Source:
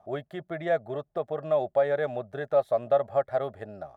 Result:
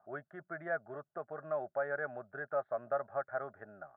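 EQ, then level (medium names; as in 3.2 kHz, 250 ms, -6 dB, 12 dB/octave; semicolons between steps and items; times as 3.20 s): high-pass 120 Hz; four-pole ladder low-pass 1.6 kHz, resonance 75%; peaking EQ 500 Hz -4.5 dB 0.23 oct; 0.0 dB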